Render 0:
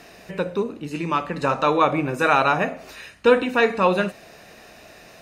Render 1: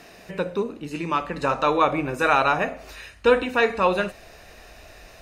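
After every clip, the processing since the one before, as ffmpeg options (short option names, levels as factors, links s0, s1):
-af "asubboost=boost=10:cutoff=58,volume=0.891"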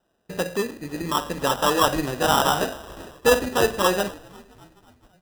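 -filter_complex "[0:a]agate=range=0.0631:threshold=0.00794:ratio=16:detection=peak,asplit=6[s0][s1][s2][s3][s4][s5];[s1]adelay=258,afreqshift=-73,volume=0.0631[s6];[s2]adelay=516,afreqshift=-146,volume=0.0403[s7];[s3]adelay=774,afreqshift=-219,volume=0.0257[s8];[s4]adelay=1032,afreqshift=-292,volume=0.0166[s9];[s5]adelay=1290,afreqshift=-365,volume=0.0106[s10];[s0][s6][s7][s8][s9][s10]amix=inputs=6:normalize=0,acrusher=samples=20:mix=1:aa=0.000001"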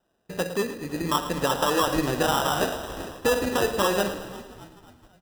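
-filter_complex "[0:a]dynaudnorm=f=470:g=5:m=3.76,alimiter=limit=0.251:level=0:latency=1:release=217,asplit=2[s0][s1];[s1]aecho=0:1:110|220|330|440|550|660:0.224|0.13|0.0753|0.0437|0.0253|0.0147[s2];[s0][s2]amix=inputs=2:normalize=0,volume=0.794"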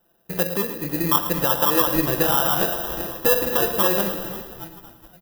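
-filter_complex "[0:a]aecho=1:1:5.9:0.56,aexciter=amount=4.6:drive=7.7:freq=11000,asplit=2[s0][s1];[s1]acompressor=threshold=0.0501:ratio=6,volume=1[s2];[s0][s2]amix=inputs=2:normalize=0,volume=0.75"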